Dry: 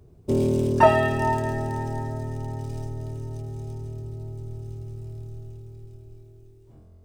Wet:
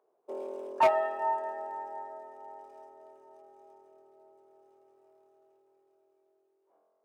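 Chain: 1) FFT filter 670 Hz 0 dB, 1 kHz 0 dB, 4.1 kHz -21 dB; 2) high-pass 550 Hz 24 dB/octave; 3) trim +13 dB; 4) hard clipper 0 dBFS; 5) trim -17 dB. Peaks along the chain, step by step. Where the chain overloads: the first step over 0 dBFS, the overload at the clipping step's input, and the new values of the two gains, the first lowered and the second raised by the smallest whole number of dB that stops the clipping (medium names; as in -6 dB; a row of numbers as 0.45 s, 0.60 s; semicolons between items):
-3.5 dBFS, -5.0 dBFS, +8.0 dBFS, 0.0 dBFS, -17.0 dBFS; step 3, 8.0 dB; step 3 +5 dB, step 5 -9 dB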